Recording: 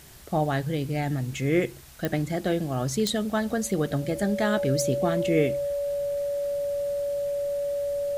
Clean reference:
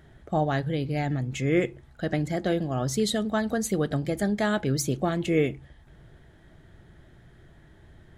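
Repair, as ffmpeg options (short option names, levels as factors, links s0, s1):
-af "adeclick=t=4,bandreject=f=570:w=30,afwtdn=0.0032"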